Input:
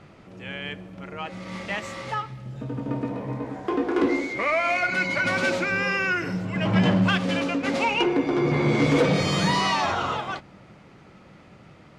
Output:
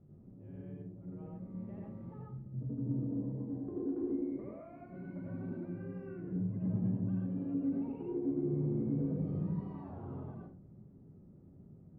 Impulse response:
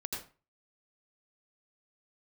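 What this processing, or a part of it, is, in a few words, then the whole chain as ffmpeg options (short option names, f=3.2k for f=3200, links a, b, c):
television next door: -filter_complex "[0:a]acompressor=threshold=-25dB:ratio=5,lowpass=280[a];[1:a]atrim=start_sample=2205[b];[a][b]afir=irnorm=-1:irlink=0,volume=-6.5dB"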